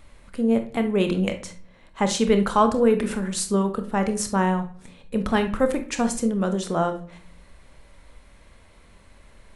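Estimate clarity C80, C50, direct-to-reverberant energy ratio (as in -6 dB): 16.5 dB, 11.0 dB, 7.0 dB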